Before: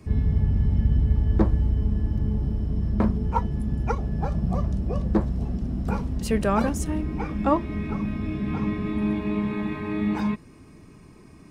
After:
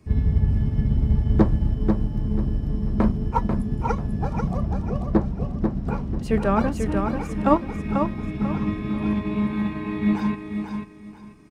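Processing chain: 4.57–6.97 s: treble shelf 5.1 kHz -11 dB; feedback delay 491 ms, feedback 36%, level -4 dB; upward expansion 1.5:1, over -36 dBFS; trim +4 dB

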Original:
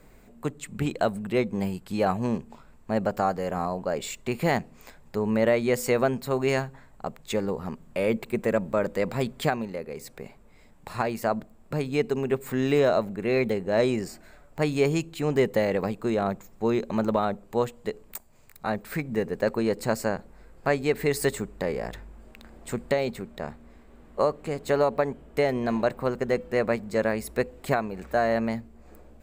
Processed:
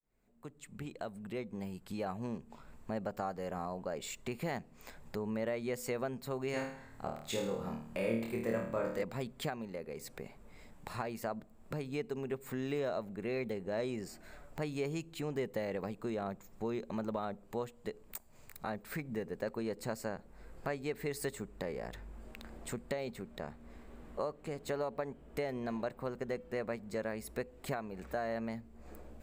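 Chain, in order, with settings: fade-in on the opening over 2.76 s; compression 2:1, threshold -45 dBFS, peak gain reduction 15 dB; 6.51–9.03 s: flutter echo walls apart 4.5 m, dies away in 0.57 s

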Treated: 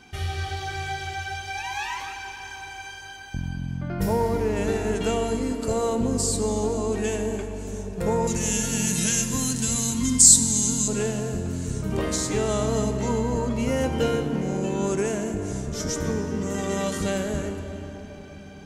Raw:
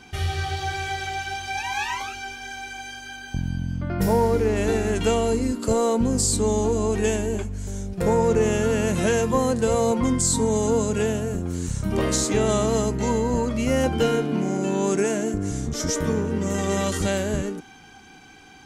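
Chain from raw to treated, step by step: 8.27–10.88 s: FFT filter 310 Hz 0 dB, 460 Hz -20 dB, 5.7 kHz +14 dB; reverberation RT60 4.8 s, pre-delay 58 ms, DRR 7.5 dB; trim -3.5 dB

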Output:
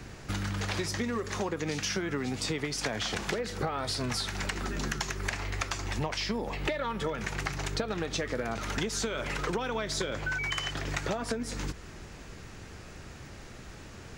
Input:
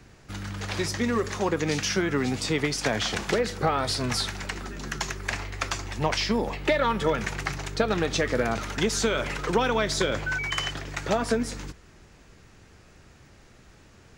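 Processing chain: compression 10:1, threshold -36 dBFS, peak gain reduction 18 dB; trim +7 dB

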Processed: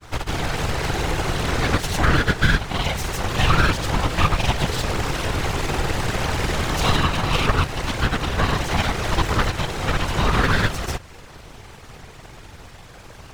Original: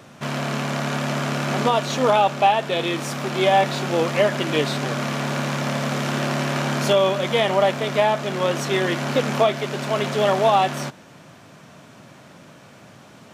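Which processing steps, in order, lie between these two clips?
granulator; full-wave rectifier; whisper effect; in parallel at +2 dB: compression, threshold -30 dBFS, peak gain reduction 16 dB

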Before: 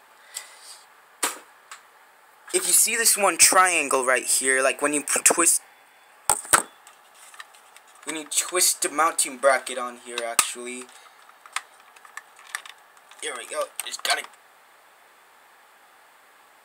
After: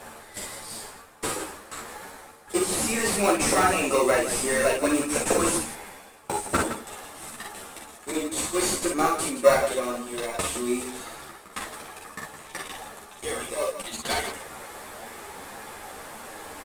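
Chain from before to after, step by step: CVSD coder 64 kbps; high-pass 160 Hz 12 dB/octave; treble shelf 6.8 kHz +11 dB; reverse; upward compressor, threshold -23 dBFS; reverse; tilt shelf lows +6 dB, about 700 Hz; in parallel at -7.5 dB: sample-rate reducer 1.6 kHz, jitter 0%; on the sum: multi-tap echo 44/57/164 ms -5/-5.5/-10 dB; three-phase chorus

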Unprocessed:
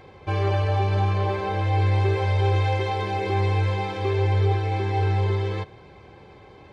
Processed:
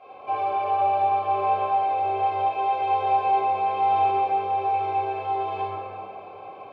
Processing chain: bass shelf 76 Hz -9 dB; compression, threshold -29 dBFS, peak gain reduction 9.5 dB; vowel filter a; reverberation RT60 2.6 s, pre-delay 5 ms, DRR -11.5 dB; trim +5.5 dB

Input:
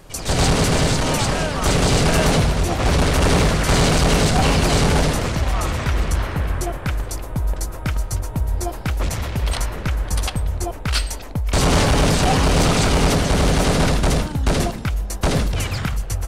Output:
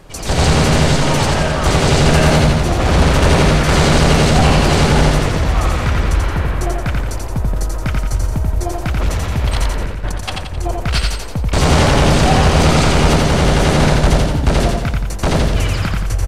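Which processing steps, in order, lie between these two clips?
treble shelf 6.9 kHz -8 dB; 9.81–10.74 s: compressor with a negative ratio -25 dBFS, ratio -0.5; feedback delay 87 ms, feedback 47%, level -3 dB; trim +3 dB

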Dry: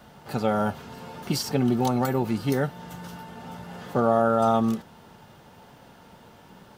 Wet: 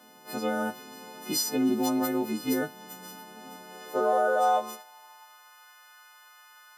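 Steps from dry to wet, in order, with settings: partials quantised in pitch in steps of 3 st; high-pass sweep 270 Hz -> 1.3 kHz, 3.48–5.65 s; trim -7.5 dB

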